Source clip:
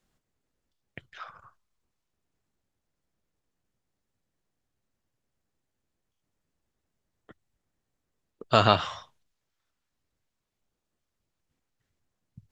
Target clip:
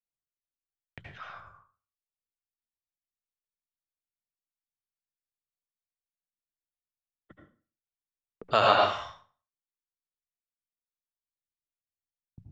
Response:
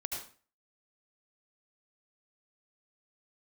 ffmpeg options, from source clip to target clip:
-filter_complex "[0:a]bandreject=frequency=60:width_type=h:width=6,bandreject=frequency=120:width_type=h:width=6,bandreject=frequency=180:width_type=h:width=6,agate=range=-32dB:threshold=-53dB:ratio=16:detection=peak,bass=frequency=250:gain=3,treble=frequency=4000:gain=-7,acrossover=split=380[link_01][link_02];[link_01]acompressor=threshold=-39dB:ratio=6[link_03];[link_03][link_02]amix=inputs=2:normalize=0[link_04];[1:a]atrim=start_sample=2205[link_05];[link_04][link_05]afir=irnorm=-1:irlink=0"

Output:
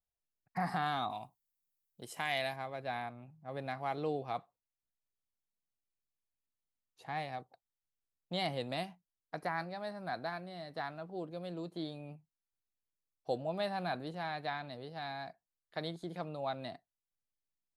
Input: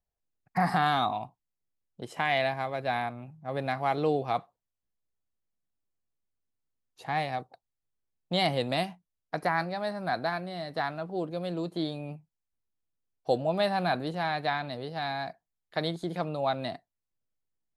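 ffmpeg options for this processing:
ffmpeg -i in.wav -filter_complex "[0:a]asplit=3[link_01][link_02][link_03];[link_01]afade=type=out:start_time=1.09:duration=0.02[link_04];[link_02]aemphasis=mode=production:type=75fm,afade=type=in:start_time=1.09:duration=0.02,afade=type=out:start_time=2.55:duration=0.02[link_05];[link_03]afade=type=in:start_time=2.55:duration=0.02[link_06];[link_04][link_05][link_06]amix=inputs=3:normalize=0,volume=-9dB" out.wav

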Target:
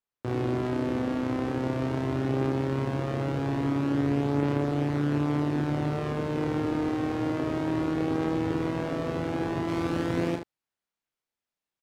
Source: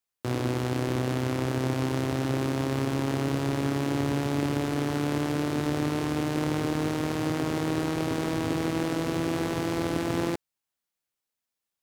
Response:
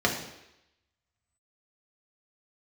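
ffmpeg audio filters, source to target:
-af "asetnsamples=nb_out_samples=441:pad=0,asendcmd='9.68 lowpass f 3000',lowpass=frequency=1600:poles=1,aecho=1:1:35|75:0.531|0.376,volume=-1dB"

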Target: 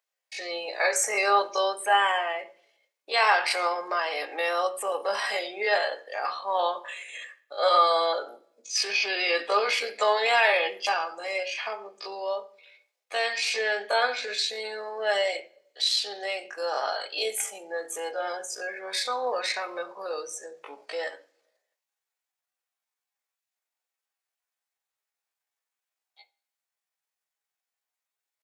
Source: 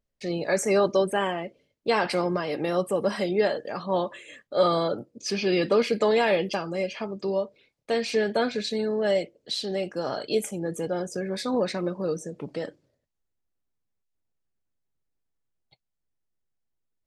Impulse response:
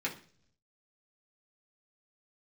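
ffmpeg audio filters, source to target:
-filter_complex "[0:a]highpass=frequency=660:width=0.5412,highpass=frequency=660:width=1.3066,atempo=0.6,asplit=2[link_01][link_02];[1:a]atrim=start_sample=2205,lowshelf=frequency=170:gain=11[link_03];[link_02][link_03]afir=irnorm=-1:irlink=0,volume=-7.5dB[link_04];[link_01][link_04]amix=inputs=2:normalize=0,volume=3dB"

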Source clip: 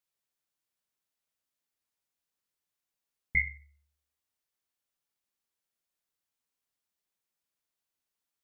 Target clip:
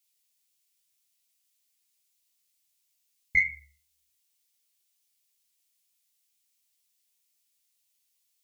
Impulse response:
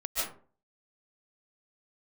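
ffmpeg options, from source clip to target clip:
-af "flanger=delay=16:depth=4.1:speed=2.2,aexciter=amount=3.4:drive=7.7:freq=2100"

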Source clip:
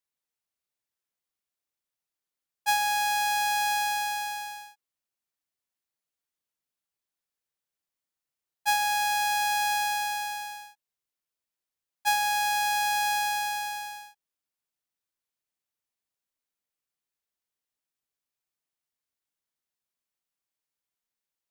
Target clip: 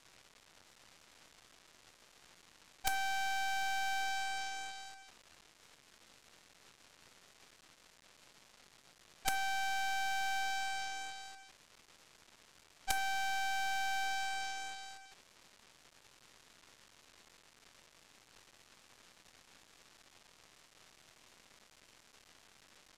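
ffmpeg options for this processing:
ffmpeg -i in.wav -filter_complex "[0:a]aeval=exprs='val(0)+0.5*0.0224*sgn(val(0))':channel_layout=same,lowpass=4700,asplit=2[link_01][link_02];[link_02]adelay=21,volume=-6dB[link_03];[link_01][link_03]amix=inputs=2:normalize=0,asetrate=41278,aresample=44100,aresample=16000,acrusher=bits=4:dc=4:mix=0:aa=0.000001,aresample=44100,aeval=exprs='0.282*(cos(1*acos(clip(val(0)/0.282,-1,1)))-cos(1*PI/2))+0.112*(cos(3*acos(clip(val(0)/0.282,-1,1)))-cos(3*PI/2))+0.0251*(cos(5*acos(clip(val(0)/0.282,-1,1)))-cos(5*PI/2))+0.0126*(cos(7*acos(clip(val(0)/0.282,-1,1)))-cos(7*PI/2))+0.0501*(cos(8*acos(clip(val(0)/0.282,-1,1)))-cos(8*PI/2))':channel_layout=same,volume=-4.5dB" out.wav

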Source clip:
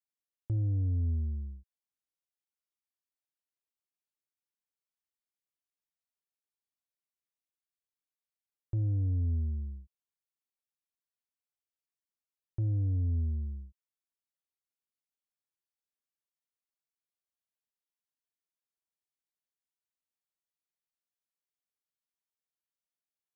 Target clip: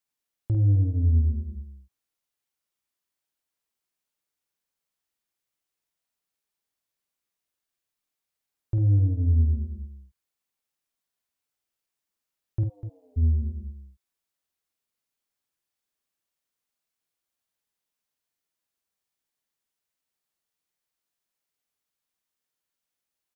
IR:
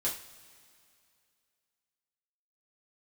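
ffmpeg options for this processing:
-filter_complex "[0:a]asplit=3[link_01][link_02][link_03];[link_01]afade=type=out:start_time=12.63:duration=0.02[link_04];[link_02]highpass=frequency=600:width=0.5412,highpass=frequency=600:width=1.3066,afade=type=in:start_time=12.63:duration=0.02,afade=type=out:start_time=13.16:duration=0.02[link_05];[link_03]afade=type=in:start_time=13.16:duration=0.02[link_06];[link_04][link_05][link_06]amix=inputs=3:normalize=0,asplit=2[link_07][link_08];[link_08]aecho=0:1:49.56|247.8:0.562|0.282[link_09];[link_07][link_09]amix=inputs=2:normalize=0,volume=7dB"

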